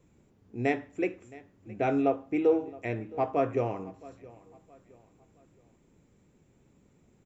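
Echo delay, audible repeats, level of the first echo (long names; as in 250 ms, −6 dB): 668 ms, 2, −21.0 dB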